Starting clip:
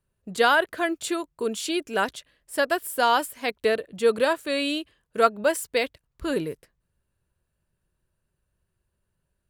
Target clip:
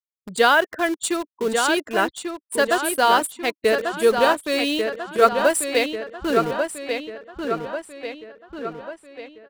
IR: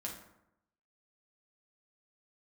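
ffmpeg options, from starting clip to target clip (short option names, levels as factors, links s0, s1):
-filter_complex "[0:a]afftfilt=real='re*gte(hypot(re,im),0.0158)':imag='im*gte(hypot(re,im),0.0158)':win_size=1024:overlap=0.75,equalizer=f=9100:t=o:w=0.46:g=8,asplit=2[s0][s1];[s1]acrusher=bits=4:mix=0:aa=0.000001,volume=0.473[s2];[s0][s2]amix=inputs=2:normalize=0,asplit=2[s3][s4];[s4]adelay=1142,lowpass=f=4700:p=1,volume=0.531,asplit=2[s5][s6];[s6]adelay=1142,lowpass=f=4700:p=1,volume=0.53,asplit=2[s7][s8];[s8]adelay=1142,lowpass=f=4700:p=1,volume=0.53,asplit=2[s9][s10];[s10]adelay=1142,lowpass=f=4700:p=1,volume=0.53,asplit=2[s11][s12];[s12]adelay=1142,lowpass=f=4700:p=1,volume=0.53,asplit=2[s13][s14];[s14]adelay=1142,lowpass=f=4700:p=1,volume=0.53,asplit=2[s15][s16];[s16]adelay=1142,lowpass=f=4700:p=1,volume=0.53[s17];[s3][s5][s7][s9][s11][s13][s15][s17]amix=inputs=8:normalize=0"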